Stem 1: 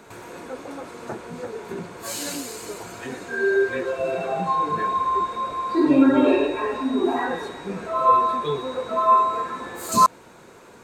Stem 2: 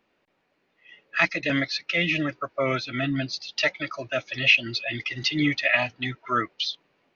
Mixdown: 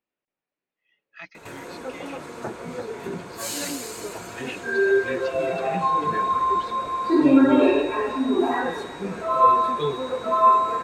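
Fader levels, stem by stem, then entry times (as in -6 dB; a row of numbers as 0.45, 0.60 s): +0.5, -19.5 dB; 1.35, 0.00 s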